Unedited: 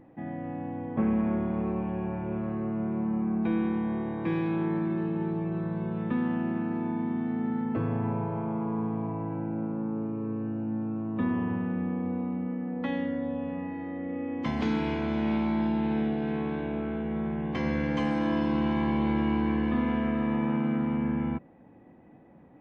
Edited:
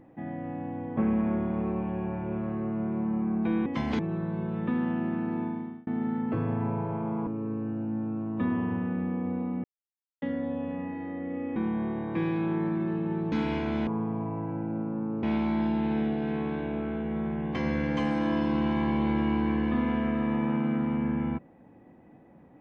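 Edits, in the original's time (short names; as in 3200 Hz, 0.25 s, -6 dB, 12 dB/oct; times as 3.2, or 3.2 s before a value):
3.66–5.42 swap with 14.35–14.68
6.84–7.3 fade out
8.7–10.06 move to 15.23
12.43–13.01 mute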